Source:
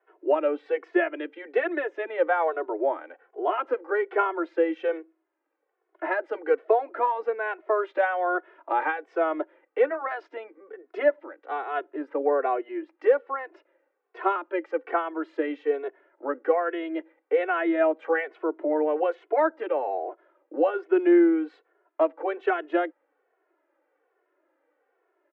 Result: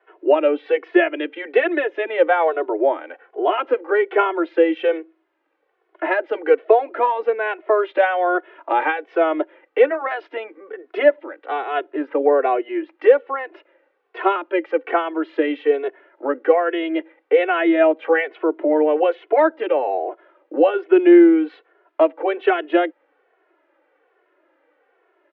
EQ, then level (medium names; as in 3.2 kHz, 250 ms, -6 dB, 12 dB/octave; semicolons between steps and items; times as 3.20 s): resonant low-pass 3.2 kHz, resonance Q 1.9; dynamic bell 1.3 kHz, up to -5 dB, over -38 dBFS, Q 0.94; +8.5 dB